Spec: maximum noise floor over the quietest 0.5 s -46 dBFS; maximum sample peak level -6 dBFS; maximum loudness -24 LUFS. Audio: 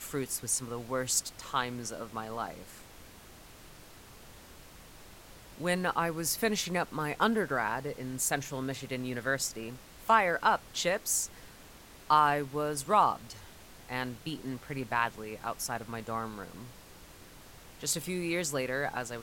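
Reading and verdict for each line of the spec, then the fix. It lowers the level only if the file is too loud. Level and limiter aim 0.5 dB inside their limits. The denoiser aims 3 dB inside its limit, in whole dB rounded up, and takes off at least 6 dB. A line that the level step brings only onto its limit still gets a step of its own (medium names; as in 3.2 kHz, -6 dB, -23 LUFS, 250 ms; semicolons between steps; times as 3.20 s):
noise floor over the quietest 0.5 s -52 dBFS: pass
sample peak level -12.0 dBFS: pass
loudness -31.5 LUFS: pass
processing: none needed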